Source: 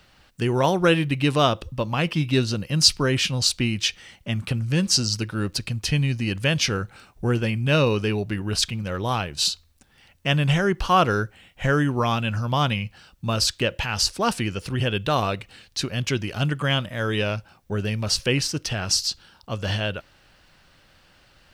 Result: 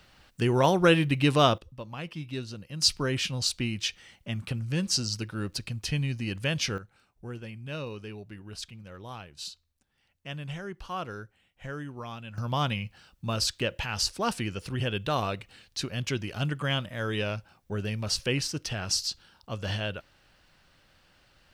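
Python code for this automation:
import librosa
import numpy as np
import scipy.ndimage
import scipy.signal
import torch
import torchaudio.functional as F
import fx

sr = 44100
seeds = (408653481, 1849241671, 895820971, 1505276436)

y = fx.gain(x, sr, db=fx.steps((0.0, -2.0), (1.58, -14.5), (2.82, -7.0), (6.78, -17.0), (12.38, -6.0)))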